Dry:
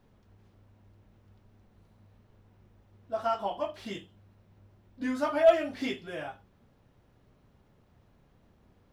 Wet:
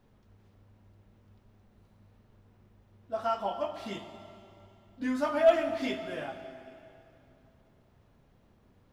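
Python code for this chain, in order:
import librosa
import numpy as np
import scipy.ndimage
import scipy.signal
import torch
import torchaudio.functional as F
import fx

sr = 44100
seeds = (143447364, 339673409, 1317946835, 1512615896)

y = fx.rev_plate(x, sr, seeds[0], rt60_s=2.8, hf_ratio=0.9, predelay_ms=0, drr_db=7.5)
y = y * librosa.db_to_amplitude(-1.0)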